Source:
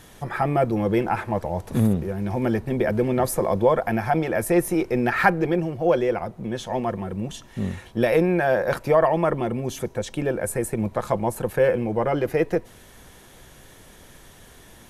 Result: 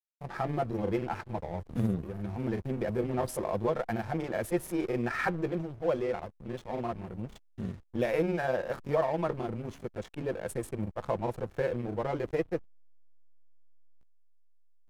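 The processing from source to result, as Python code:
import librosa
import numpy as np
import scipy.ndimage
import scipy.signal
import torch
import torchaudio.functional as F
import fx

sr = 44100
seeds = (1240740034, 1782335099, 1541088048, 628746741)

y = fx.backlash(x, sr, play_db=-27.5)
y = fx.granulator(y, sr, seeds[0], grain_ms=100.0, per_s=20.0, spray_ms=26.0, spread_st=0)
y = y * librosa.db_to_amplitude(-7.5)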